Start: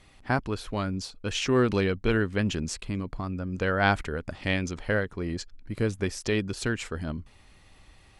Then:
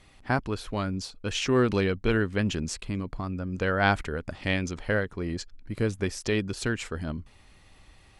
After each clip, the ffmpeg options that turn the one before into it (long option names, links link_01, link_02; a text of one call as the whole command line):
ffmpeg -i in.wav -af anull out.wav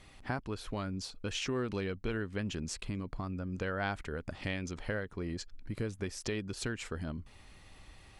ffmpeg -i in.wav -af "acompressor=threshold=-37dB:ratio=2.5" out.wav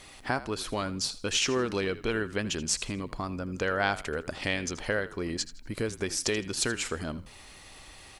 ffmpeg -i in.wav -filter_complex "[0:a]bass=frequency=250:gain=-8,treble=frequency=4000:gain=6,asplit=4[link_01][link_02][link_03][link_04];[link_02]adelay=81,afreqshift=-48,volume=-16dB[link_05];[link_03]adelay=162,afreqshift=-96,volume=-26.2dB[link_06];[link_04]adelay=243,afreqshift=-144,volume=-36.3dB[link_07];[link_01][link_05][link_06][link_07]amix=inputs=4:normalize=0,volume=8dB" out.wav